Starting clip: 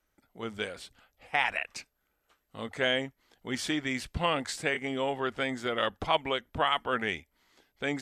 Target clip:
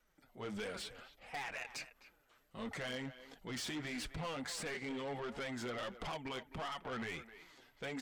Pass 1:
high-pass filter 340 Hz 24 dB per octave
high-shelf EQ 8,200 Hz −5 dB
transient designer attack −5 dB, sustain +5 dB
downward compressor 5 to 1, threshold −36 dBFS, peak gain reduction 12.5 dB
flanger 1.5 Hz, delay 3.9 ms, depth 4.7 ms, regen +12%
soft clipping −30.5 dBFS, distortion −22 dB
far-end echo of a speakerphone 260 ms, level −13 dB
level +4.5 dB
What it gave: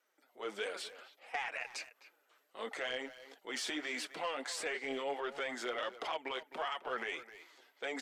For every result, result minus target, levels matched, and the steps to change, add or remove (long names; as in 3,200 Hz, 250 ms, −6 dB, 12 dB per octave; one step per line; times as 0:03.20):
soft clipping: distortion −13 dB; 250 Hz band −6.5 dB
change: soft clipping −42 dBFS, distortion −9 dB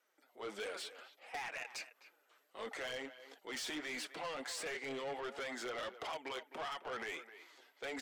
250 Hz band −5.5 dB
remove: high-pass filter 340 Hz 24 dB per octave